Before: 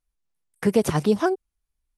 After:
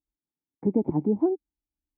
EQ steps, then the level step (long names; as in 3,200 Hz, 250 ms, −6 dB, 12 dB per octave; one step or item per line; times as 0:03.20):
formant resonators in series u
high-pass filter 42 Hz
+6.5 dB